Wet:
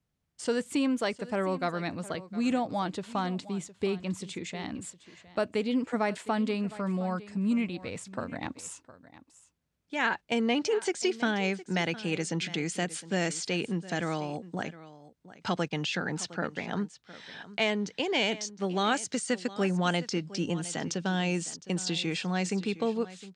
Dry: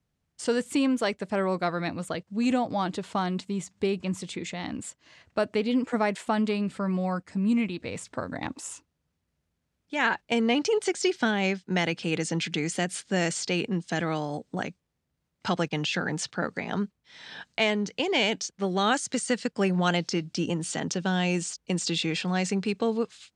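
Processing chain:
single-tap delay 711 ms −17 dB
level −3 dB

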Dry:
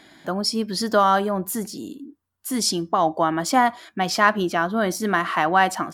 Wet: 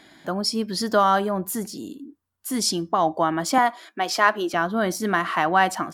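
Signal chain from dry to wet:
0:03.58–0:04.54: high-pass filter 270 Hz 24 dB per octave
level −1 dB

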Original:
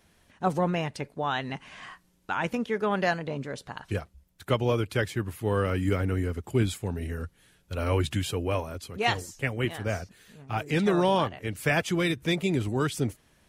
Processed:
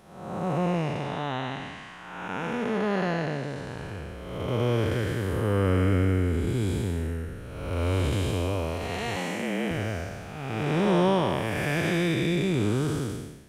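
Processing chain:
spectrum smeared in time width 437 ms
0:09.16–0:09.71: frequency shifter +89 Hz
level +5.5 dB

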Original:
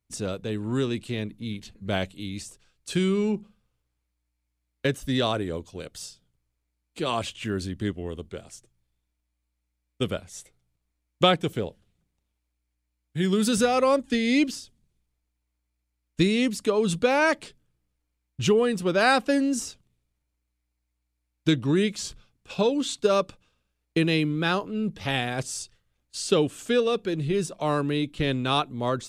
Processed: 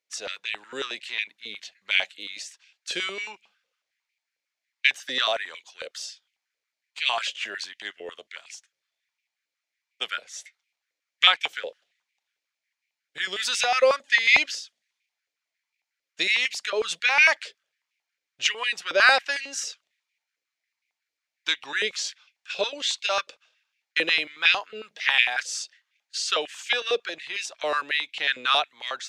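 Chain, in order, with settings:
flat-topped bell 3,300 Hz +12.5 dB 2.4 octaves
high-pass on a step sequencer 11 Hz 510–2,300 Hz
level −7.5 dB

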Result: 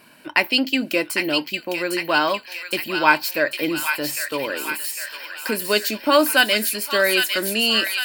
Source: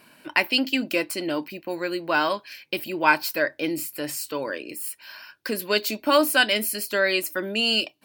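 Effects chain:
delay with a high-pass on its return 804 ms, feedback 61%, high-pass 1,600 Hz, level −3.5 dB
level +3 dB

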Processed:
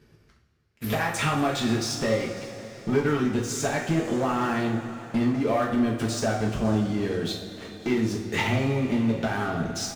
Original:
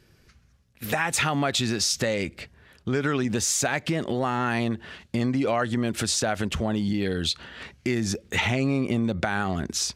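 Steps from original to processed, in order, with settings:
high-pass filter 55 Hz 6 dB per octave
high-shelf EQ 2,200 Hz −8 dB
transient designer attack +10 dB, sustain −11 dB
leveller curve on the samples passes 3
transient designer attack −5 dB, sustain −1 dB
reversed playback
upward compression, threshold −29 dBFS
reversed playback
tuned comb filter 110 Hz, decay 1.6 s, mix 60%
on a send: single-tap delay 550 ms −21 dB
on the sum: coupled-rooms reverb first 0.47 s, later 4.7 s, from −18 dB, DRR −2.5 dB
level −6 dB

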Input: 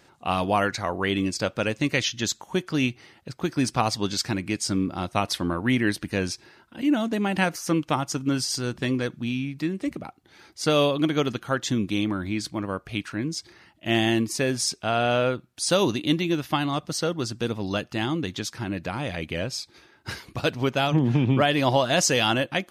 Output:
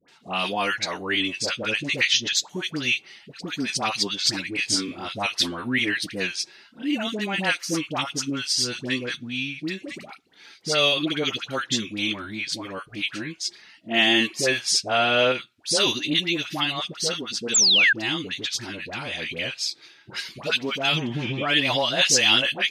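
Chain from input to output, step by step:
meter weighting curve D
flanger 0.29 Hz, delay 4.1 ms, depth 4.6 ms, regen −37%
all-pass dispersion highs, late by 85 ms, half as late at 1,000 Hz
0:04.56–0:05.05: double-tracking delay 27 ms −3 dB
0:13.91–0:15.32: parametric band 700 Hz +5.5 dB 3 octaves
0:17.54–0:17.93: sound drawn into the spectrogram fall 1,500–7,900 Hz −17 dBFS

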